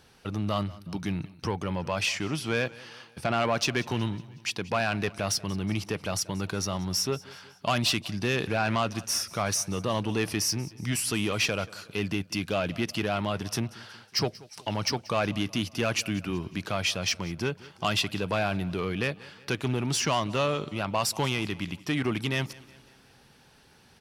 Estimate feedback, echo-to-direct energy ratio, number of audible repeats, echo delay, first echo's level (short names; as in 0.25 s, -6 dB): 51%, -19.5 dB, 3, 0.184 s, -21.0 dB